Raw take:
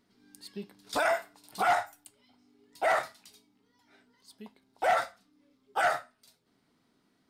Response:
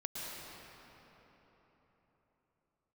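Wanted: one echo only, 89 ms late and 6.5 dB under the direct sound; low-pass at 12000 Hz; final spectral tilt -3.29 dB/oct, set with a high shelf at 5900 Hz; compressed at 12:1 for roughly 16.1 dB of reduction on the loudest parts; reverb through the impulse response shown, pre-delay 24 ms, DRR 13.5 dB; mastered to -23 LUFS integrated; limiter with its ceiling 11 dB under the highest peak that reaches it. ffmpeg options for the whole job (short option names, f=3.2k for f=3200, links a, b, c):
-filter_complex "[0:a]lowpass=12k,highshelf=f=5.9k:g=-6,acompressor=threshold=-38dB:ratio=12,alimiter=level_in=14dB:limit=-24dB:level=0:latency=1,volume=-14dB,aecho=1:1:89:0.473,asplit=2[a][b];[1:a]atrim=start_sample=2205,adelay=24[c];[b][c]afir=irnorm=-1:irlink=0,volume=-15dB[d];[a][d]amix=inputs=2:normalize=0,volume=26.5dB"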